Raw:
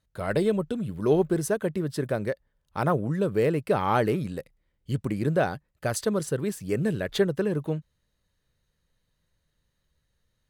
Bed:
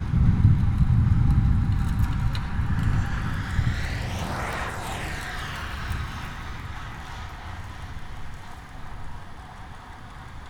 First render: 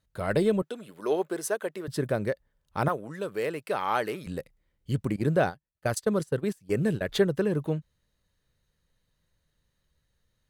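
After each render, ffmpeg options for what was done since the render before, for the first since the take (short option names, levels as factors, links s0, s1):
-filter_complex "[0:a]asettb=1/sr,asplit=3[s0][s1][s2];[s0]atrim=end=0.624[s3];[s1]atrim=start=0.62:end=1.88,asetpts=PTS-STARTPTS,afade=t=in:d=0.004:c=qsin,afade=t=out:st=1.256:d=0.004:c=qsin,highpass=490[s4];[s2]atrim=start=1.876[s5];[s3][s4]acrossfade=d=0.004:c1=hsin:c2=qsin[s6];[s6][s5]acrossfade=d=0.004:c1=qsin:c2=hsin,asettb=1/sr,asplit=3[s7][s8][s9];[s7]atrim=end=2.884[s10];[s8]atrim=start=2.88:end=4.27,asetpts=PTS-STARTPTS,afade=t=in:d=0.004:c=qsin,afade=t=out:st=1.386:d=0.004:c=qsin,highpass=f=840:p=1[s11];[s9]atrim=start=4.266[s12];[s10][s11]acrossfade=d=0.004:c1=hsin:c2=qsin[s13];[s13][s12]acrossfade=d=0.004:c1=qsin:c2=hsin,asettb=1/sr,asplit=3[s14][s15][s16];[s14]atrim=end=5.164[s17];[s15]atrim=start=5.16:end=7.03,asetpts=PTS-STARTPTS,afade=t=in:d=0.004:c=qsin,afade=t=out:st=1.866:d=0.004:c=qsin,agate=range=0.112:threshold=0.0282:ratio=16:release=100:detection=peak[s18];[s16]atrim=start=7.026[s19];[s17][s18]acrossfade=d=0.004:c1=hsin:c2=qsin[s20];[s20][s19]acrossfade=d=0.004:c1=qsin:c2=hsin"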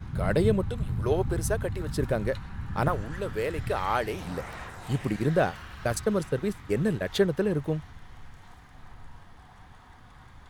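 -filter_complex "[1:a]volume=0.299[s0];[0:a][s0]amix=inputs=2:normalize=0"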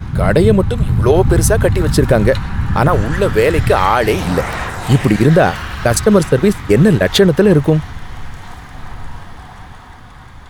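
-af "dynaudnorm=f=160:g=13:m=1.68,alimiter=level_in=5.01:limit=0.891:release=50:level=0:latency=1"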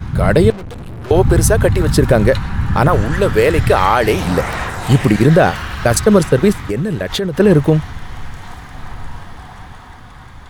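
-filter_complex "[0:a]asettb=1/sr,asplit=3[s0][s1][s2];[s0]atrim=end=0.504[s3];[s1]atrim=start=0.5:end=1.11,asetpts=PTS-STARTPTS,afade=t=in:d=0.004:c=qsin,afade=t=out:st=0.606:d=0.004:c=qsin,aeval=exprs='(tanh(25.1*val(0)+0.45)-tanh(0.45))/25.1':c=same[s4];[s2]atrim=start=1.106[s5];[s3][s4]acrossfade=d=0.004:c1=hsin:c2=qsin[s6];[s6][s5]acrossfade=d=0.004:c1=qsin:c2=hsin,asettb=1/sr,asplit=3[s7][s8][s9];[s7]atrim=end=6.694[s10];[s8]atrim=start=6.69:end=7.4,asetpts=PTS-STARTPTS,afade=t=in:d=0.004:c=qsin,afade=t=out:st=0.706:d=0.004:c=qsin,acompressor=threshold=0.158:ratio=5:attack=3.2:release=140:knee=1:detection=peak[s11];[s9]atrim=start=7.396[s12];[s10][s11]acrossfade=d=0.004:c1=hsin:c2=qsin[s13];[s13][s12]acrossfade=d=0.004:c1=qsin:c2=hsin"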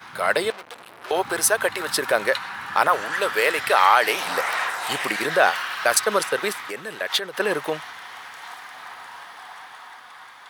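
-af "highpass=880,equalizer=f=7000:w=2.9:g=-4.5"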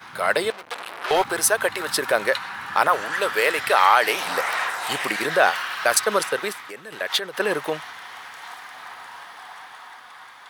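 -filter_complex "[0:a]asettb=1/sr,asplit=3[s0][s1][s2];[s0]atrim=end=0.714[s3];[s1]atrim=start=0.71:end=1.24,asetpts=PTS-STARTPTS,afade=t=in:d=0.004:c=qsin,afade=t=out:st=0.526:d=0.004:c=qsin,asplit=2[s4][s5];[s5]highpass=f=720:p=1,volume=6.31,asoftclip=type=tanh:threshold=0.299[s6];[s4][s6]amix=inputs=2:normalize=0,lowpass=f=6700:p=1,volume=0.501[s7];[s2]atrim=start=1.236[s8];[s3][s7]acrossfade=d=0.004:c1=hsin:c2=qsin[s9];[s9][s8]acrossfade=d=0.004:c1=qsin:c2=hsin,asplit=2[s10][s11];[s10]atrim=end=6.92,asetpts=PTS-STARTPTS,afade=t=out:st=6.28:d=0.64:c=qua:silence=0.501187[s12];[s11]atrim=start=6.92,asetpts=PTS-STARTPTS,afade=t=in:d=0.004:c=hsin:silence=0.501187[s13];[s12][s13]concat=n=2:v=0:a=1"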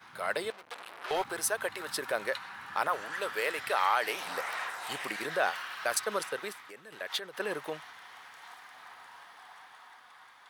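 -af "volume=0.266"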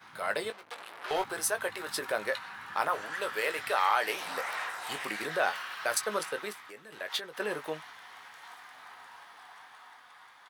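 -filter_complex "[0:a]asplit=2[s0][s1];[s1]adelay=19,volume=0.355[s2];[s0][s2]amix=inputs=2:normalize=0"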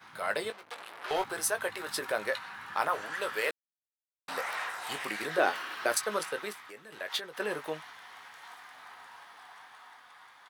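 -filter_complex "[0:a]asettb=1/sr,asplit=3[s0][s1][s2];[s0]atrim=end=5.384[s3];[s1]atrim=start=5.38:end=5.92,asetpts=PTS-STARTPTS,afade=t=in:d=0.004:c=qsin,afade=t=out:st=0.536:d=0.004:c=qsin,equalizer=f=320:w=1.5:g=14[s4];[s2]atrim=start=5.916[s5];[s3][s4]acrossfade=d=0.004:c1=hsin:c2=qsin[s6];[s6][s5]acrossfade=d=0.004:c1=qsin:c2=hsin,asplit=3[s7][s8][s9];[s7]atrim=end=3.51,asetpts=PTS-STARTPTS,afade=t=out:st=3.506:d=0.004:c=hsin[s10];[s8]atrim=start=3.51:end=4.28,asetpts=PTS-STARTPTS,volume=0[s11];[s9]atrim=start=4.28,asetpts=PTS-STARTPTS,afade=t=in:d=0.004:c=hsin[s12];[s10][s11][s12]concat=n=3:v=0:a=1"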